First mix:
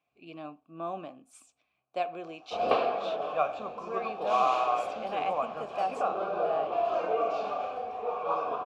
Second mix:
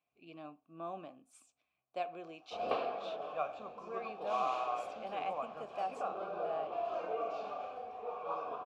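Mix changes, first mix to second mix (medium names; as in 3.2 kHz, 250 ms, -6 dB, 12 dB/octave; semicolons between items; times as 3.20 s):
speech -7.0 dB; background -9.0 dB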